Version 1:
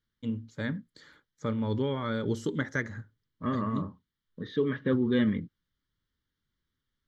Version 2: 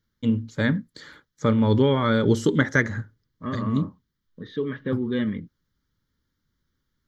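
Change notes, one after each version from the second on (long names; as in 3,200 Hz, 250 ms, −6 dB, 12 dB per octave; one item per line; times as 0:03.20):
first voice +10.5 dB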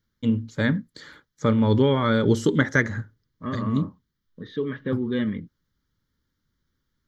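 nothing changed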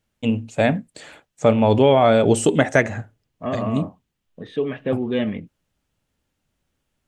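master: remove phaser with its sweep stopped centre 2,600 Hz, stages 6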